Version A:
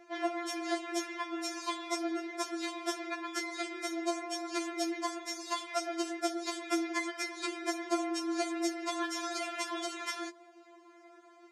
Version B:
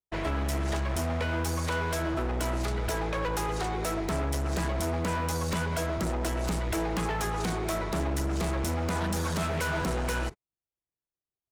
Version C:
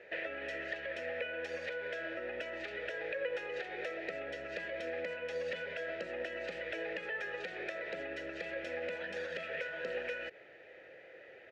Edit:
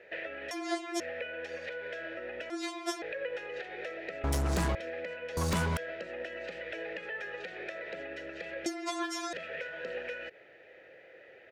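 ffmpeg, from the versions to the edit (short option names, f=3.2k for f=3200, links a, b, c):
-filter_complex "[0:a]asplit=3[a][b][c];[1:a]asplit=2[d][e];[2:a]asplit=6[f][g][h][i][j][k];[f]atrim=end=0.512[l];[a]atrim=start=0.508:end=1.002[m];[g]atrim=start=0.998:end=2.502[n];[b]atrim=start=2.498:end=3.022[o];[h]atrim=start=3.018:end=4.242[p];[d]atrim=start=4.238:end=4.752[q];[i]atrim=start=4.748:end=5.372[r];[e]atrim=start=5.368:end=5.772[s];[j]atrim=start=5.768:end=8.662[t];[c]atrim=start=8.658:end=9.332[u];[k]atrim=start=9.328[v];[l][m]acrossfade=d=0.004:c1=hsin:c2=hsin[w];[w][n]acrossfade=d=0.004:c1=hsin:c2=hsin[x];[x][o]acrossfade=d=0.004:c1=hsin:c2=hsin[y];[y][p]acrossfade=d=0.004:c1=hsin:c2=hsin[z];[z][q]acrossfade=d=0.004:c1=hsin:c2=hsin[aa];[aa][r]acrossfade=d=0.004:c1=hsin:c2=hsin[ab];[ab][s]acrossfade=d=0.004:c1=hsin:c2=hsin[ac];[ac][t]acrossfade=d=0.004:c1=hsin:c2=hsin[ad];[ad][u]acrossfade=d=0.004:c1=hsin:c2=hsin[ae];[ae][v]acrossfade=d=0.004:c1=hsin:c2=hsin"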